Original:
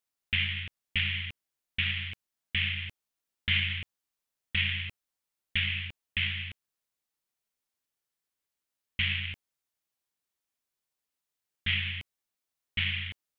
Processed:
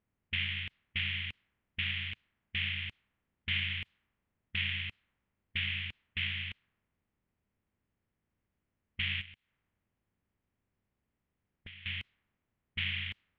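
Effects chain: spectral levelling over time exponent 0.6; level-controlled noise filter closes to 660 Hz, open at -25.5 dBFS; 9.21–11.86 s: compression 8:1, threshold -41 dBFS, peak gain reduction 18.5 dB; trim -7.5 dB

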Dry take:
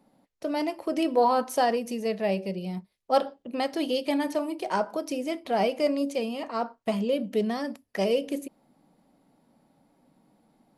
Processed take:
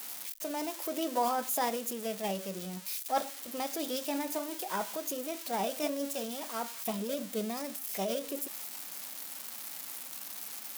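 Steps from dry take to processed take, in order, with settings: zero-crossing glitches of -20.5 dBFS; formant shift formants +2 st; trim -8 dB

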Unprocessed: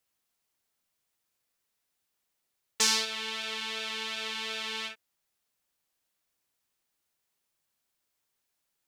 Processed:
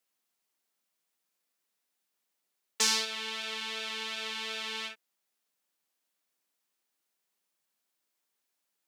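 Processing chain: high-pass 170 Hz 24 dB/octave; trim -1.5 dB

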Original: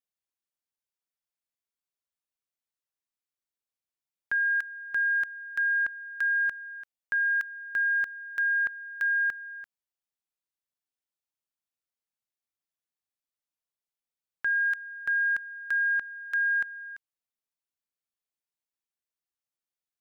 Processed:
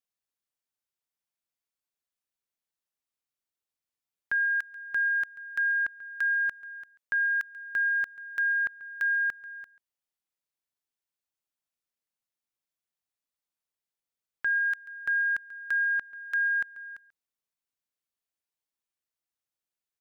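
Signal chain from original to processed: delay 138 ms -19.5 dB

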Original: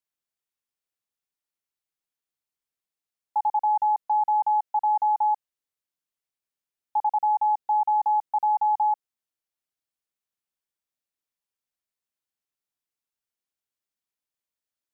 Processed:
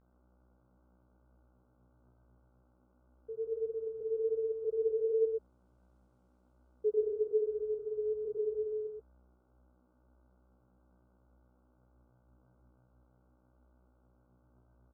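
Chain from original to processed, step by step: Doppler pass-by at 6.05 s, 7 m/s, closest 4.2 m; mains buzz 120 Hz, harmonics 25, -64 dBFS -6 dB/octave; chorus voices 6, 1 Hz, delay 13 ms, depth 3 ms; pitch shift -11.5 st; delay 126 ms -4.5 dB

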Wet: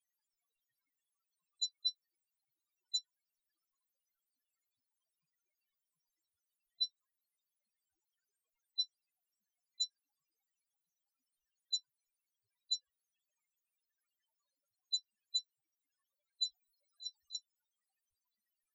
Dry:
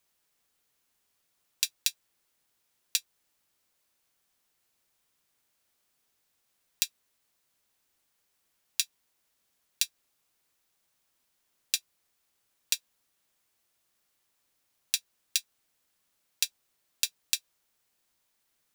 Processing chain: loudest bins only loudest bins 2; 16.44–17.35 s: compressor with a negative ratio -49 dBFS, ratio -0.5; trim +8 dB

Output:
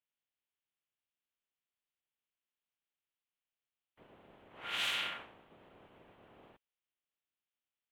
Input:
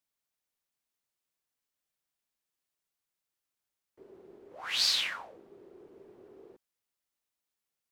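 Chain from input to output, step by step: spectral peaks clipped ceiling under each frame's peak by 21 dB; 4.63–5.17 s: whistle 1.4 kHz -40 dBFS; resonant high shelf 4 kHz -9 dB, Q 3; trim -7 dB

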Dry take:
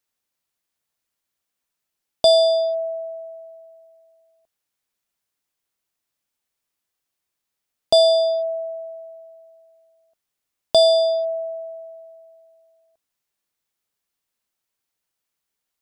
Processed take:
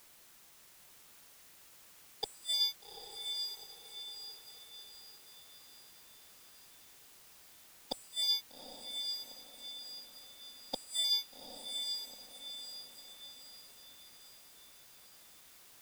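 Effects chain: spectral gate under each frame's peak -20 dB weak; bass shelf 78 Hz +12 dB; waveshaping leveller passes 3; inverted gate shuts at -21 dBFS, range -30 dB; word length cut 10-bit, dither triangular; on a send: echo that smears into a reverb 803 ms, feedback 47%, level -5.5 dB

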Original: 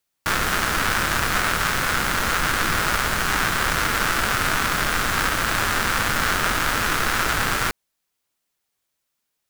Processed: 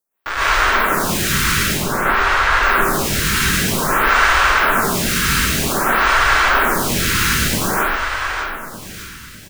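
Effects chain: 1.63–2.51 s: low-pass 2.9 kHz 6 dB/octave; feedback delay 605 ms, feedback 48%, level -8 dB; plate-style reverb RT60 1.1 s, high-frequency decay 0.9×, pre-delay 100 ms, DRR -9.5 dB; lamp-driven phase shifter 0.52 Hz; trim -1 dB

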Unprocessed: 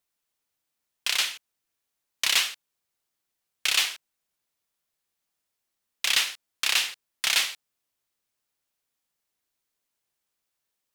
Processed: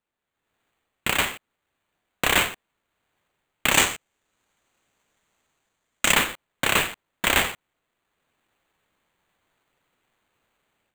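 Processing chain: sample-rate reducer 5.3 kHz, jitter 0%; level rider gain up to 14.5 dB; 3.72–6.13 s: peaking EQ 6.6 kHz +9 dB 0.92 oct; trim -6 dB

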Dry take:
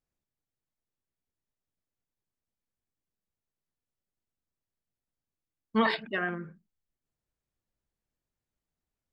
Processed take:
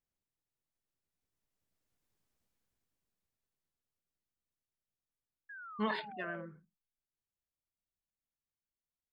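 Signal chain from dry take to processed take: Doppler pass-by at 2.24 s, 13 m/s, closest 6.6 m; painted sound fall, 5.49–6.46 s, 510–1700 Hz -56 dBFS; trim +7.5 dB

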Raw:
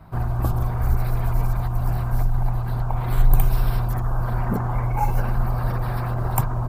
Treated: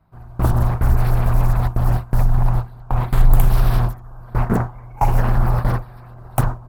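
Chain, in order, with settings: gate with hold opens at -13 dBFS; in parallel at +0.5 dB: peak limiter -13.5 dBFS, peak gain reduction 9 dB; on the sum: loudspeaker Doppler distortion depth 0.65 ms

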